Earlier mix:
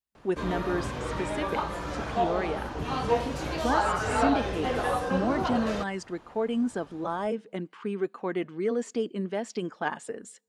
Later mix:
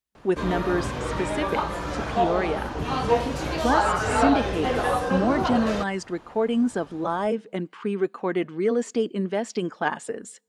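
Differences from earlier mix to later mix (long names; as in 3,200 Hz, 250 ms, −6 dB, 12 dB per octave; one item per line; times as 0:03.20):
speech +5.0 dB
background +4.0 dB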